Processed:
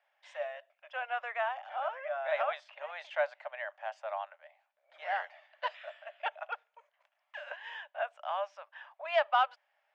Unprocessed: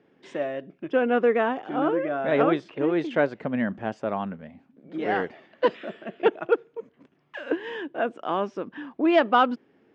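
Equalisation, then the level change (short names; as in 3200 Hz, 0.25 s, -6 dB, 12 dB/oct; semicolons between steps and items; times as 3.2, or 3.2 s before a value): rippled Chebyshev high-pass 580 Hz, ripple 3 dB; -5.0 dB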